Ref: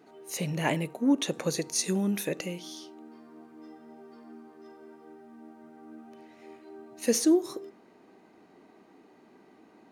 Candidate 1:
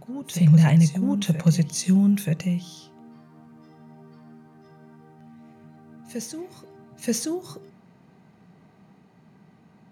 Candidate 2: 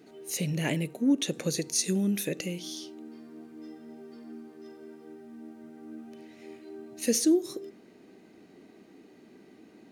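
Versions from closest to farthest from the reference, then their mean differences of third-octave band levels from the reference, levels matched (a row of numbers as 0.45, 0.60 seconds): 2, 1; 3.0, 7.0 decibels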